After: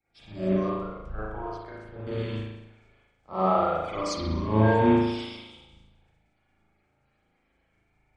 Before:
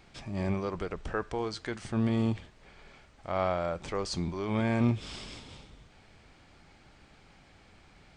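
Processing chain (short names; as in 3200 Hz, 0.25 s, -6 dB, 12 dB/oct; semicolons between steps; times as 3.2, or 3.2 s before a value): bin magnitudes rounded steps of 30 dB; 0.69–2.07 graphic EQ 125/250/2000/4000/8000 Hz -5/-9/-7/-7/-10 dB; spring tank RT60 1.4 s, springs 37 ms, chirp 30 ms, DRR -7.5 dB; three-band expander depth 70%; gain -4 dB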